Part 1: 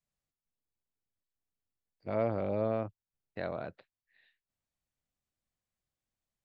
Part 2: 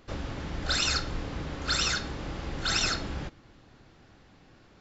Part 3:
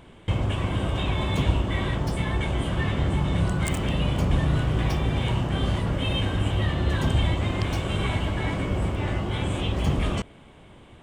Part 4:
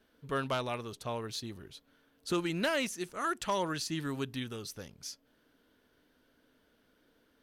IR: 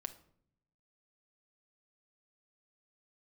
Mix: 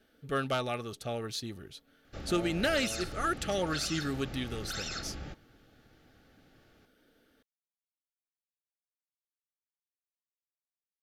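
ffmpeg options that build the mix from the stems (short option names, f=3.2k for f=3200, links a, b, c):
-filter_complex "[0:a]adelay=200,volume=-11.5dB[a];[1:a]alimiter=limit=-22dB:level=0:latency=1,adelay=2050,volume=-7dB[b];[3:a]volume=2dB[c];[a][b][c]amix=inputs=3:normalize=0,asuperstop=centerf=1000:order=20:qfactor=5.7"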